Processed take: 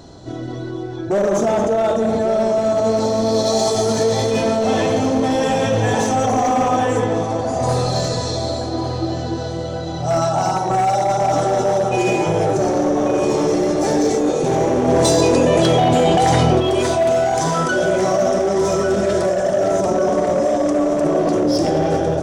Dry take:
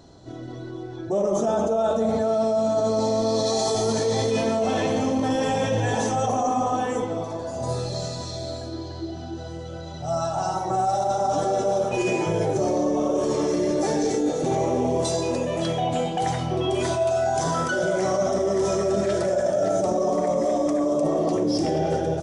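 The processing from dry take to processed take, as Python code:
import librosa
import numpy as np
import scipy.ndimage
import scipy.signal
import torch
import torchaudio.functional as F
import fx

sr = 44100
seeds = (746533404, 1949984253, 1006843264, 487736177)

y = fx.rider(x, sr, range_db=3, speed_s=2.0)
y = np.clip(y, -10.0 ** (-18.5 / 20.0), 10.0 ** (-18.5 / 20.0))
y = fx.echo_filtered(y, sr, ms=1147, feedback_pct=50, hz=3100.0, wet_db=-9)
y = fx.env_flatten(y, sr, amount_pct=100, at=(14.87, 16.59), fade=0.02)
y = y * 10.0 ** (6.0 / 20.0)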